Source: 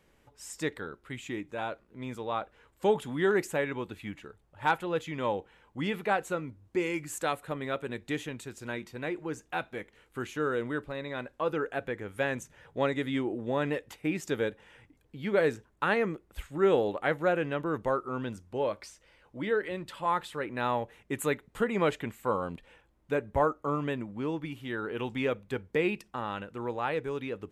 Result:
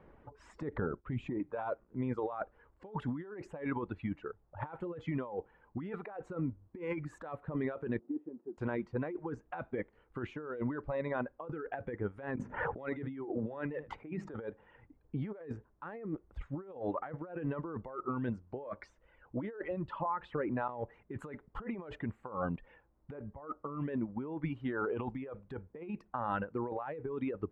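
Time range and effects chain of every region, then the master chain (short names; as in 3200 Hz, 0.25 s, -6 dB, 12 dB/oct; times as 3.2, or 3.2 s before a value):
0.62–1.4 expander -55 dBFS + low shelf 450 Hz +11 dB + compressor 4:1, threshold -34 dBFS
7.99–8.58 zero-crossing step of -46 dBFS + ladder band-pass 330 Hz, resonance 55% + comb 5.5 ms, depth 31%
12.37–14.34 notches 50/100/150/200/250 Hz + echo 76 ms -19.5 dB + three-band squash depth 100%
19.63–20.69 high shelf 5400 Hz -10 dB + compressor 16:1, threshold -35 dBFS
whole clip: Chebyshev low-pass 1100 Hz, order 2; reverb removal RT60 1.4 s; negative-ratio compressor -41 dBFS, ratio -1; gain +2 dB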